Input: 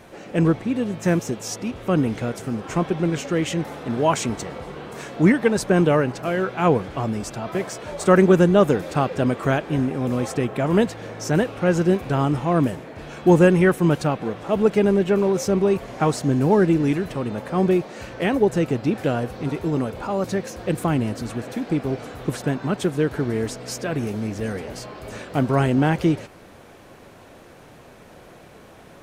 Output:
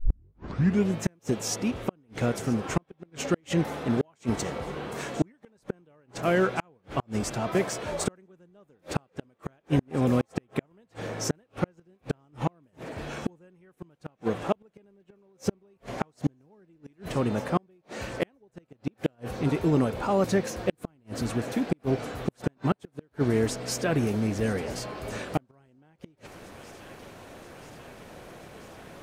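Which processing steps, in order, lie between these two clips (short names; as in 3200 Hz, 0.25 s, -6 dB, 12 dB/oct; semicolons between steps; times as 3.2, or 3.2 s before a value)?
tape start at the beginning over 0.95 s; thin delay 0.984 s, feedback 74%, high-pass 2400 Hz, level -20 dB; flipped gate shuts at -13 dBFS, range -41 dB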